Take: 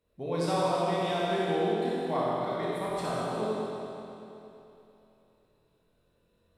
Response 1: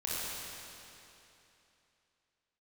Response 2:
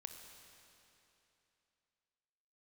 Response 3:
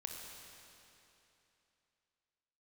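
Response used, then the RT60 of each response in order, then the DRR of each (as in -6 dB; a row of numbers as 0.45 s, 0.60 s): 1; 3.0 s, 3.0 s, 3.0 s; -8.0 dB, 5.0 dB, 1.0 dB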